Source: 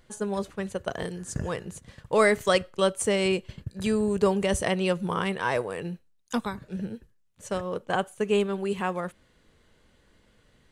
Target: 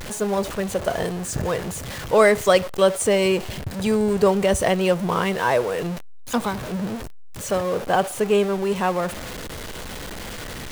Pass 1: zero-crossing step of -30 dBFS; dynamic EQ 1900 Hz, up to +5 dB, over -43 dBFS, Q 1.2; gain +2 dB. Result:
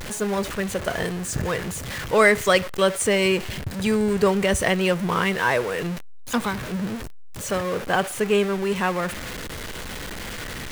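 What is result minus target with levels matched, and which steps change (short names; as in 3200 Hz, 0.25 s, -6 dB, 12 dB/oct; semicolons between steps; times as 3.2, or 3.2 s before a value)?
2000 Hz band +5.0 dB
change: dynamic EQ 680 Hz, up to +5 dB, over -43 dBFS, Q 1.2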